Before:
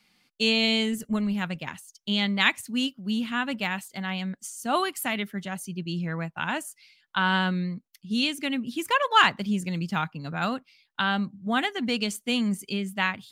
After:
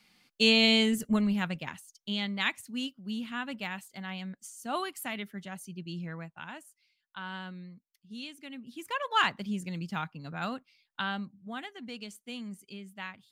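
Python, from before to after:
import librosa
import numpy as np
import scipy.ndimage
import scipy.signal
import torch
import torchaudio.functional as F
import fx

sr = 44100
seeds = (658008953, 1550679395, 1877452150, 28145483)

y = fx.gain(x, sr, db=fx.line((1.11, 0.5), (2.29, -8.0), (6.05, -8.0), (6.65, -16.5), (8.45, -16.5), (9.21, -7.0), (11.01, -7.0), (11.61, -15.0)))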